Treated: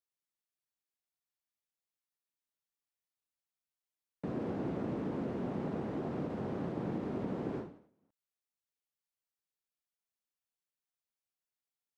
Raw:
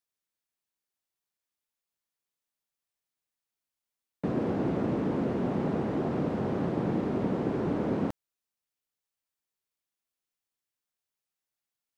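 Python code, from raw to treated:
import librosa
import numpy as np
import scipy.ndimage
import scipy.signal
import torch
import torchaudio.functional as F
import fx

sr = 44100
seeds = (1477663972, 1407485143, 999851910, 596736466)

y = fx.end_taper(x, sr, db_per_s=110.0)
y = F.gain(torch.from_numpy(y), -7.5).numpy()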